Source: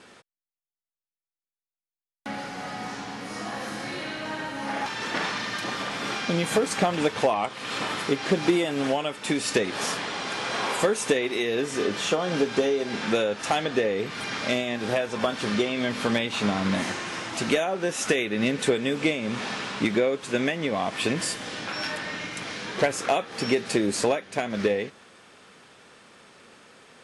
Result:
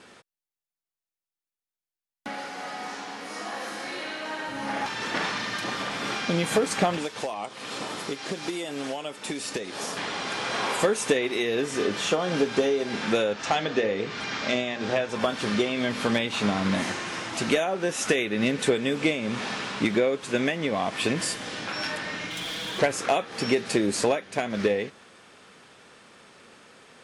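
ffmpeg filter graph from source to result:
-filter_complex "[0:a]asettb=1/sr,asplit=3[a][b][c];[a]atrim=end=2.284[d];[b]atrim=start=2.28:end=4.48,asetpts=PTS-STARTPTS,afade=t=in:d=0.004:c=qsin,afade=t=out:st=2.196:d=0.004:c=qsin,aeval=exprs='val(0)+0.00355*(sin(2*PI*50*n/s)+sin(2*PI*2*50*n/s)/2+sin(2*PI*3*50*n/s)/3+sin(2*PI*4*50*n/s)/4+sin(2*PI*5*50*n/s)/5)':c=same,highpass=320[e];[c]atrim=start=4.476[f];[d][e]acrossfade=d=0.004:c1=hsin:c2=qsin[g];[g][f]acrossfade=d=0.004:c1=qsin:c2=hsin,asettb=1/sr,asplit=3[h][i][j];[h]atrim=end=6.974[k];[i]atrim=start=6.97:end=9.97,asetpts=PTS-STARTPTS,afade=t=in:d=0.004:c=qsin,afade=t=out:st=2.996:d=0.004:c=qsin,lowshelf=f=130:g=-9.5,acrossover=split=890|4100[l][m][n];[l]acompressor=threshold=-31dB:ratio=4[o];[m]acompressor=threshold=-40dB:ratio=4[p];[n]acompressor=threshold=-35dB:ratio=4[q];[o][p][q]amix=inputs=3:normalize=0[r];[j]atrim=start=9.966[s];[k][r]acrossfade=d=0.004:c1=hsin:c2=qsin[t];[t][s]acrossfade=d=0.004:c1=qsin:c2=hsin,asettb=1/sr,asplit=3[u][v][w];[u]atrim=end=13.334[x];[v]atrim=start=13.33:end=15.09,asetpts=PTS-STARTPTS,afade=t=in:d=0.004:c=qsin,afade=t=out:st=1.756:d=0.004:c=qsin,lowpass=f=7.2k:w=0.5412,lowpass=f=7.2k:w=1.3066,bandreject=f=60:t=h:w=6,bandreject=f=120:t=h:w=6,bandreject=f=180:t=h:w=6,bandreject=f=240:t=h:w=6,bandreject=f=300:t=h:w=6,bandreject=f=360:t=h:w=6,bandreject=f=420:t=h:w=6,bandreject=f=480:t=h:w=6,bandreject=f=540:t=h:w=6,bandreject=f=600:t=h:w=6[y];[w]atrim=start=15.086[z];[x][y]acrossfade=d=0.004:c1=hsin:c2=qsin[aa];[aa][z]acrossfade=d=0.004:c1=qsin:c2=hsin,asettb=1/sr,asplit=3[ab][ac][ad];[ab]atrim=end=22.304[ae];[ac]atrim=start=22.3:end=22.79,asetpts=PTS-STARTPTS,afade=t=in:d=0.004:c=qsin,afade=t=out:st=0.486:d=0.004:c=qsin,equalizer=f=3.4k:t=o:w=0.28:g=13,aecho=1:1:6.2:0.5,atrim=end_sample=21609,asoftclip=type=hard:threshold=-30dB[af];[ad]atrim=start=22.786[ag];[ae][af]acrossfade=d=0.004:c1=hsin:c2=qsin[ah];[ah][ag]acrossfade=d=0.004:c1=qsin:c2=hsin"

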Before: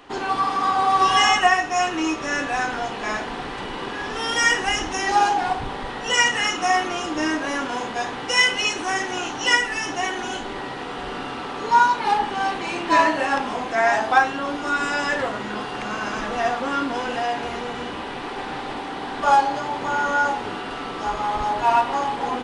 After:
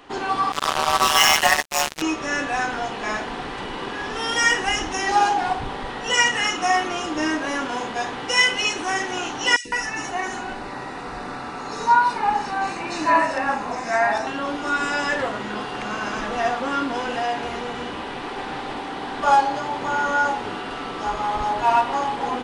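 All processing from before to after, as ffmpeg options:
-filter_complex "[0:a]asettb=1/sr,asplit=3[a][b][c];[a]atrim=end=0.524[d];[b]atrim=start=0.52:end=2.02,asetpts=PTS-STARTPTS,afade=t=in:d=0.004:c=qsin,afade=t=out:st=1.496:d=0.004:c=qsin,highshelf=f=2.3k:g=11,tremolo=f=150:d=0.788,acrusher=bits=2:mix=0:aa=0.5[e];[c]atrim=start=2.016[f];[d][e]acrossfade=d=0.004:c1=hsin:c2=qsin[g];[g][f]acrossfade=d=0.004:c1=qsin:c2=hsin,asettb=1/sr,asplit=3[h][i][j];[h]atrim=end=9.564[k];[i]atrim=start=9.56:end=14.27,asetpts=PTS-STARTPTS,afade=t=in:d=0.004:c=qsin,afade=t=out:st=4.706:d=0.004:c=qsin,bandreject=f=3.2k:w=5.2,acrossover=split=410|2900[l][m][n];[l]adelay=90[o];[m]adelay=160[p];[o][p][n]amix=inputs=3:normalize=0,atrim=end_sample=207711[q];[j]atrim=start=14.266[r];[k][q]acrossfade=d=0.004:c1=hsin:c2=qsin[s];[s][r]acrossfade=d=0.004:c1=qsin:c2=hsin"

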